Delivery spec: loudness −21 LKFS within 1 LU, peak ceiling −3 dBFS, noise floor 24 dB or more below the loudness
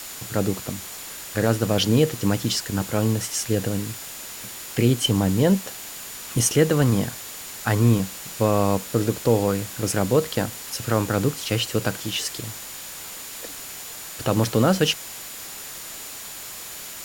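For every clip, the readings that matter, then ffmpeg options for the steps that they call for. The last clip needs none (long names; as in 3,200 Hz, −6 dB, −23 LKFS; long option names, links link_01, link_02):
interfering tone 7,000 Hz; level of the tone −43 dBFS; background noise floor −37 dBFS; target noise floor −48 dBFS; integrated loudness −24.0 LKFS; sample peak −5.0 dBFS; target loudness −21.0 LKFS
→ -af "bandreject=frequency=7000:width=30"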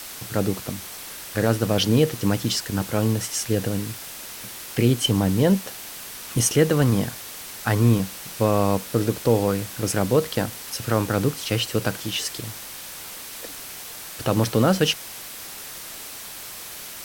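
interfering tone none found; background noise floor −38 dBFS; target noise floor −47 dBFS
→ -af "afftdn=noise_reduction=9:noise_floor=-38"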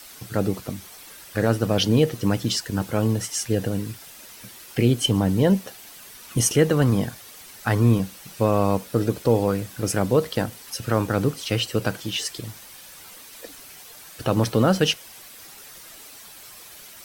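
background noise floor −44 dBFS; target noise floor −47 dBFS
→ -af "afftdn=noise_reduction=6:noise_floor=-44"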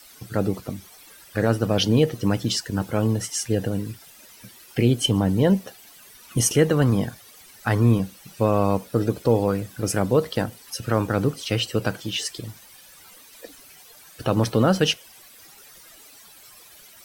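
background noise floor −49 dBFS; integrated loudness −23.0 LKFS; sample peak −5.5 dBFS; target loudness −21.0 LKFS
→ -af "volume=2dB"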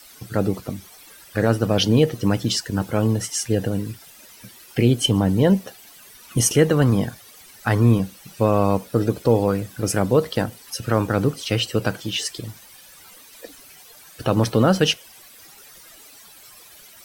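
integrated loudness −21.0 LKFS; sample peak −3.5 dBFS; background noise floor −47 dBFS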